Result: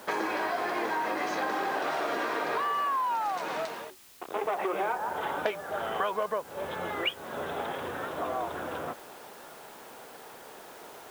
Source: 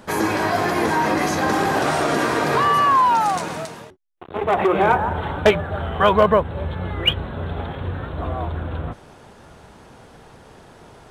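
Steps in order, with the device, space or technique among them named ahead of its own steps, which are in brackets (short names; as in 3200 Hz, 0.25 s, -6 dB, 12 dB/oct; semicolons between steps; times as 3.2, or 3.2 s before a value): baby monitor (BPF 390–4300 Hz; compressor, threshold -28 dBFS, peak gain reduction 16.5 dB; white noise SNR 22 dB)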